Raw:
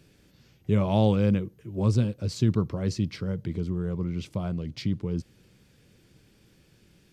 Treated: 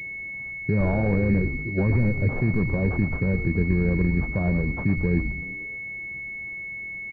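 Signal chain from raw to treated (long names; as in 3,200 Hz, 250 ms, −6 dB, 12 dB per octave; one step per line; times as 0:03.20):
brickwall limiter −20.5 dBFS, peak gain reduction 11 dB
echo with shifted repeats 113 ms, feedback 46%, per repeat −120 Hz, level −7 dB
switching amplifier with a slow clock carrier 2,200 Hz
level +7 dB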